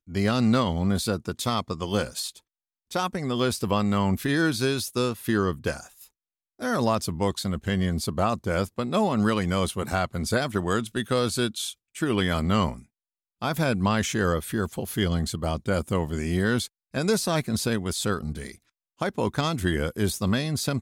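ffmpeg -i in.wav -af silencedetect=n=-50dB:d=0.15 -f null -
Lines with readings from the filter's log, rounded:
silence_start: 2.39
silence_end: 2.91 | silence_duration: 0.51
silence_start: 6.07
silence_end: 6.59 | silence_duration: 0.52
silence_start: 11.74
silence_end: 11.95 | silence_duration: 0.21
silence_start: 12.84
silence_end: 13.42 | silence_duration: 0.57
silence_start: 16.67
silence_end: 16.94 | silence_duration: 0.26
silence_start: 18.56
silence_end: 18.99 | silence_duration: 0.43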